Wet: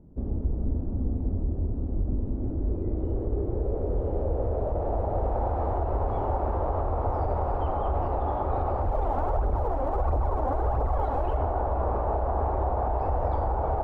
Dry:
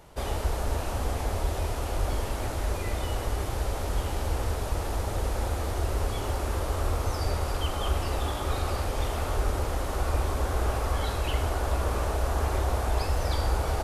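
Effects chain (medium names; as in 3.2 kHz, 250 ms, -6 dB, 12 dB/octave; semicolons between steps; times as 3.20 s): low-pass sweep 250 Hz -> 820 Hz, 2.18–5.54 s; 8.82–11.37 s: phaser 1.5 Hz, delay 4 ms, feedback 54%; peak limiter -19.5 dBFS, peak gain reduction 11 dB; trim +1.5 dB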